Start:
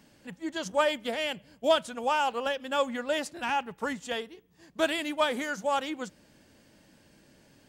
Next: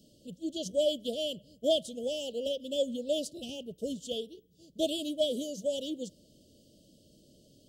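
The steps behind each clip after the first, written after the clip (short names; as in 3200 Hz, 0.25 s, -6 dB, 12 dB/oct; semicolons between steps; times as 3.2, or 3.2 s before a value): Chebyshev band-stop 630–3000 Hz, order 5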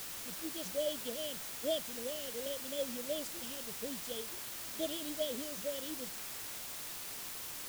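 requantised 6-bit, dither triangular; gain -8 dB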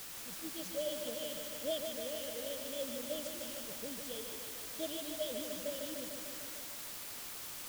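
lo-fi delay 0.15 s, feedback 80%, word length 9-bit, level -5.5 dB; gain -3 dB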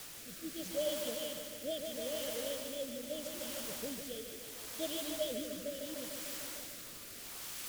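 rotary speaker horn 0.75 Hz; gain +3 dB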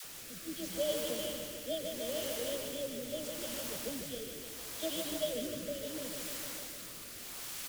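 dispersion lows, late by 48 ms, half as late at 580 Hz; frequency-shifting echo 0.13 s, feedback 52%, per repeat -130 Hz, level -12.5 dB; gain +1.5 dB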